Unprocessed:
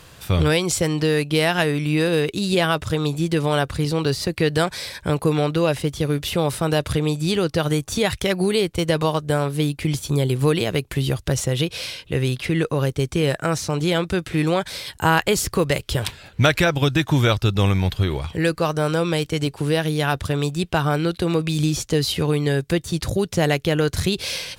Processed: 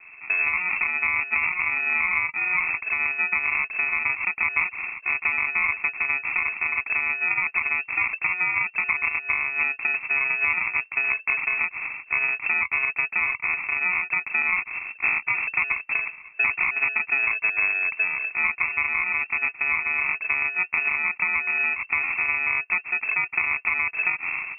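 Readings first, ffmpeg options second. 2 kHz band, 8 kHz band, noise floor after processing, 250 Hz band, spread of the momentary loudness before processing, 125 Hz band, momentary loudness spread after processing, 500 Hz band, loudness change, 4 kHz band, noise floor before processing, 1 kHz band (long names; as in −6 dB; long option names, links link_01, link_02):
+7.5 dB, below −40 dB, −48 dBFS, below −25 dB, 5 LU, below −30 dB, 3 LU, −26.5 dB, −1.0 dB, below −40 dB, −47 dBFS, −5.5 dB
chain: -af "acompressor=threshold=-21dB:ratio=3,acrusher=samples=41:mix=1:aa=0.000001,lowpass=frequency=2300:width_type=q:width=0.5098,lowpass=frequency=2300:width_type=q:width=0.6013,lowpass=frequency=2300:width_type=q:width=0.9,lowpass=frequency=2300:width_type=q:width=2.563,afreqshift=-2700"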